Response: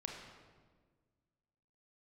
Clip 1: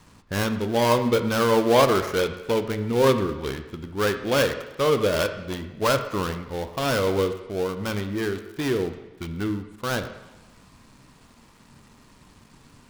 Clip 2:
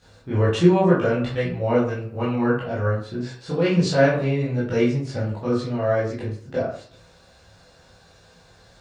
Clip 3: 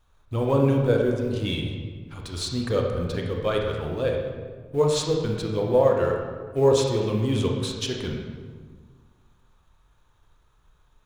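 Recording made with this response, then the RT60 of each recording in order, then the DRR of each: 3; 1.1, 0.50, 1.5 seconds; 8.0, −10.0, 0.5 decibels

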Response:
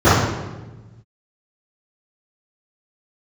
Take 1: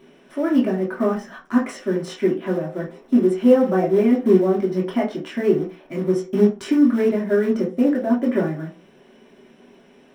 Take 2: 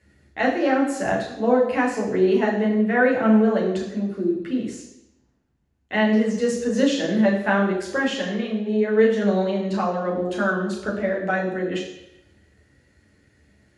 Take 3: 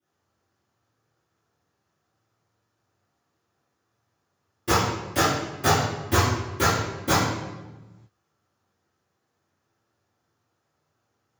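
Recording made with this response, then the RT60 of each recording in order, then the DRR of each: 3; 0.40, 0.90, 1.2 seconds; −5.0, −3.0, −15.5 decibels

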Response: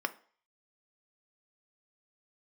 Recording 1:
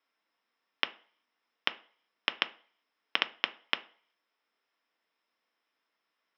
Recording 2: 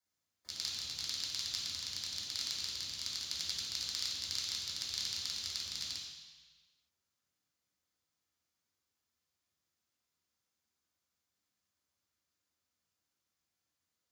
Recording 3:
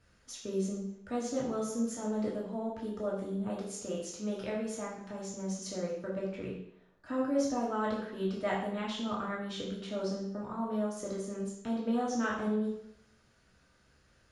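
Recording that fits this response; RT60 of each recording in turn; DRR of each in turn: 1; 0.45, 1.3, 0.70 seconds; 9.0, −4.5, −4.5 decibels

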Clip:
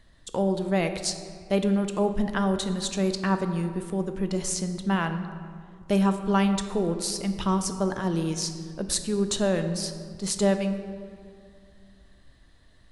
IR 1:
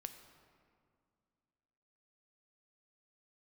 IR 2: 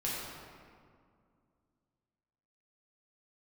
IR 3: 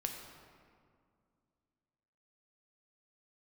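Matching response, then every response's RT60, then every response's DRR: 1; 2.3, 2.2, 2.2 seconds; 7.5, −7.0, 2.5 decibels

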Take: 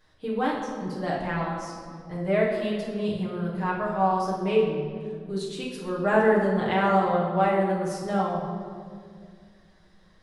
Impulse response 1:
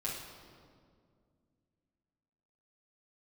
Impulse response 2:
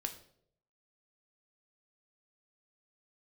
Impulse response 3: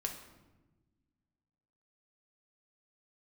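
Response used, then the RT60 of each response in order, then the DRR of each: 1; 2.1, 0.65, 1.2 seconds; −6.5, 5.0, 2.0 decibels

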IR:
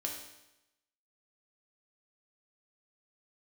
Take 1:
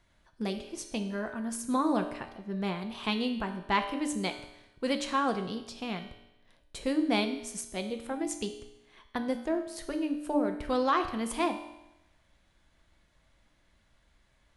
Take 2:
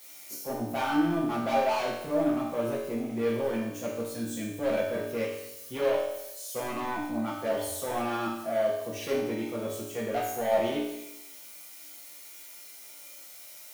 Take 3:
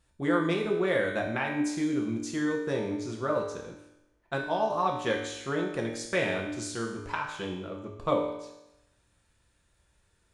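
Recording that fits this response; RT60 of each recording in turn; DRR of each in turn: 3; 0.90, 0.90, 0.90 seconds; 5.5, −6.0, −0.5 decibels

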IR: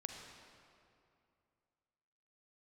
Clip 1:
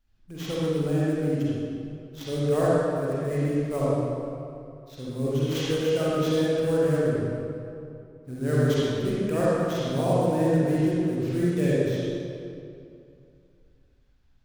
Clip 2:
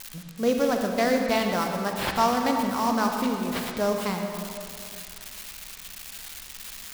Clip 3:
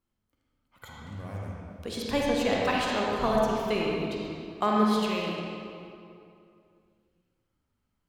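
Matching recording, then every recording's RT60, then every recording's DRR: 2; 2.6, 2.5, 2.6 seconds; −8.5, 2.5, −3.0 decibels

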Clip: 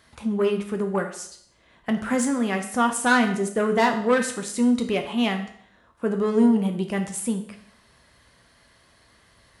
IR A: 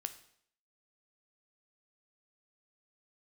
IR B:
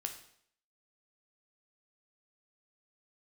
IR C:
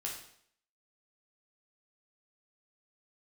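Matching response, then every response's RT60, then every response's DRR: B; 0.65, 0.65, 0.65 seconds; 9.0, 4.5, −2.5 decibels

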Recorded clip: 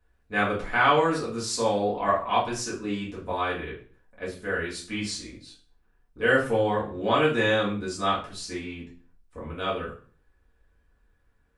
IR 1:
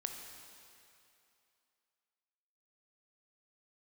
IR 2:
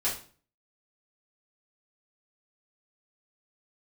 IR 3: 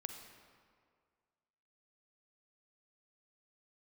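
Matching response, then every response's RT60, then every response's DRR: 2; 2.7, 0.45, 2.0 seconds; 3.5, −9.0, 5.5 decibels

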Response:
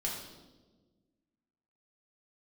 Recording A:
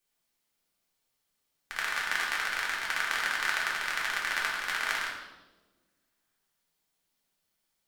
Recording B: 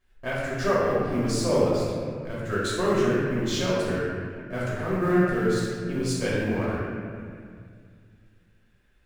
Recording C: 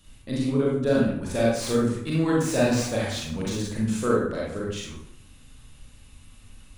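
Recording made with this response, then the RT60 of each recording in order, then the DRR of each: A; 1.3, 2.1, 0.70 seconds; −4.0, −9.0, −5.0 decibels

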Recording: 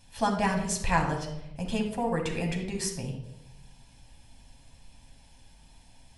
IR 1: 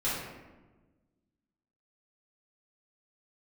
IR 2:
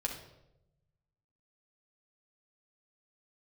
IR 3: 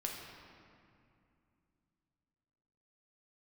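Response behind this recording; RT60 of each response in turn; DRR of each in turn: 2; 1.2, 0.90, 2.5 seconds; −10.5, 0.5, −1.0 decibels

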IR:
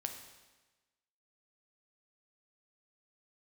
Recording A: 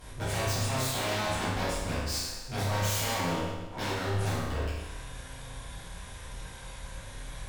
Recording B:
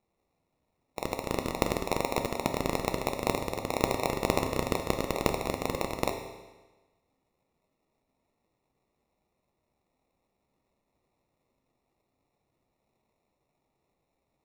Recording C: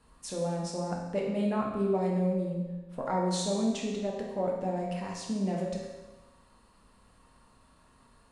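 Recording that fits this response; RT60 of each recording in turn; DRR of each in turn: B; 1.2, 1.2, 1.2 seconds; −12.0, 4.5, −2.0 decibels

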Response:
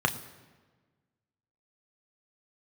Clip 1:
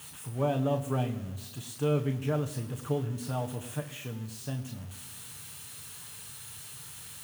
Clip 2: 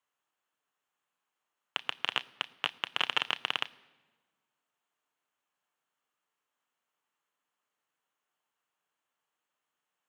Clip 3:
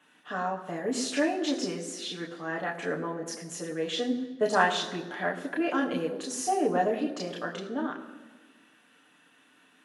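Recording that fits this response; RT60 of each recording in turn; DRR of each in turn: 1; non-exponential decay, non-exponential decay, non-exponential decay; 4.5, 13.5, −2.0 decibels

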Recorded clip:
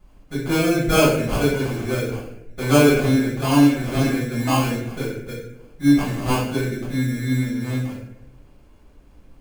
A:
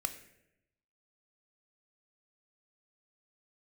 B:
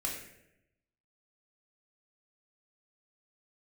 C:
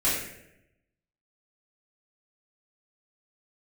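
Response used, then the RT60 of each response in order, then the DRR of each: C; 0.85, 0.85, 0.85 seconds; 8.0, −1.5, −9.0 decibels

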